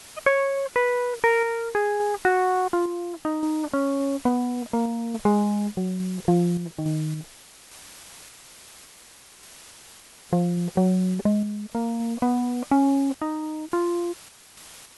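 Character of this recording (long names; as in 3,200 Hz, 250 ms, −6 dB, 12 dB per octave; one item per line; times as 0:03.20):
a quantiser's noise floor 8 bits, dither triangular
sample-and-hold tremolo
MP2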